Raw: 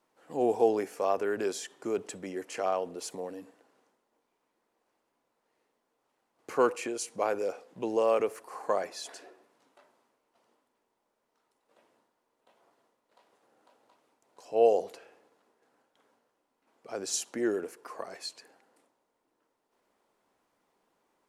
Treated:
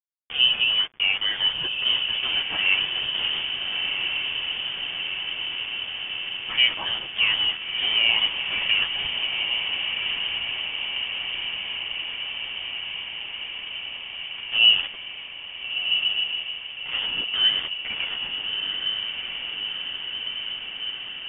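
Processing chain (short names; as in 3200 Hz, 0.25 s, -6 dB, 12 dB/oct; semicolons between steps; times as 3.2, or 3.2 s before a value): in parallel at -1.5 dB: compressor 16:1, threshold -38 dBFS, peak gain reduction 21.5 dB; on the sum: bit-crush 6-bit; chorus voices 2, 0.34 Hz, delay 11 ms, depth 3.6 ms; diffused feedback echo 1.381 s, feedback 75%, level -4 dB; inverted band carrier 3400 Hz; gain +7.5 dB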